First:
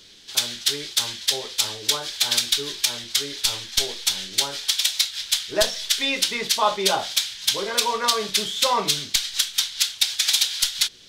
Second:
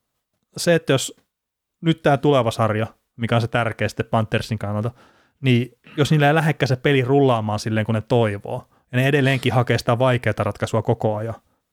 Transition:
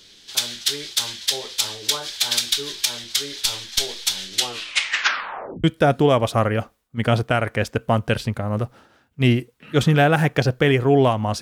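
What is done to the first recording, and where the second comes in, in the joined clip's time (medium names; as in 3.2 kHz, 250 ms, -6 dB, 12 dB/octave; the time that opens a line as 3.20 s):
first
4.32 s: tape stop 1.32 s
5.64 s: go over to second from 1.88 s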